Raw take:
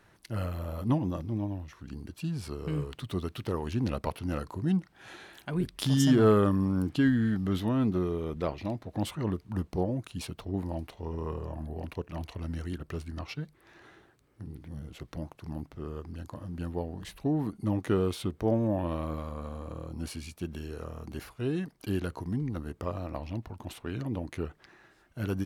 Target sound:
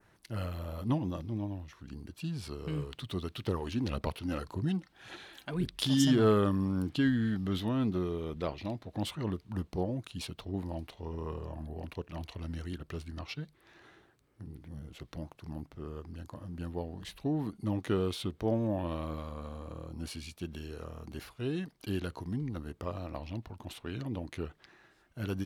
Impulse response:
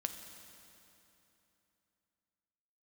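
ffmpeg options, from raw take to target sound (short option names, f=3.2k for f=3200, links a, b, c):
-filter_complex "[0:a]adynamicequalizer=threshold=0.00141:dfrequency=3600:dqfactor=1.3:tfrequency=3600:tqfactor=1.3:attack=5:release=100:ratio=0.375:range=3:mode=boostabove:tftype=bell,asettb=1/sr,asplit=3[a][b][c];[a]atrim=end=3.474[d];[b]atrim=start=3.47:end=6.05,asetpts=PTS-STARTPTS,afade=t=in:d=0.004:c=qsin,afade=t=out:st=2.576:d=0.004:c=qsin,aphaser=in_gain=1:out_gain=1:delay=3.9:decay=0.4:speed=1.8:type=sinusoidal[e];[c]atrim=start=6.046[f];[d][e]acrossfade=d=0.004:c1=hsin:c2=qsin[g];[g][f]acrossfade=d=0.004:c1=qsin:c2=hsin,volume=-3.5dB"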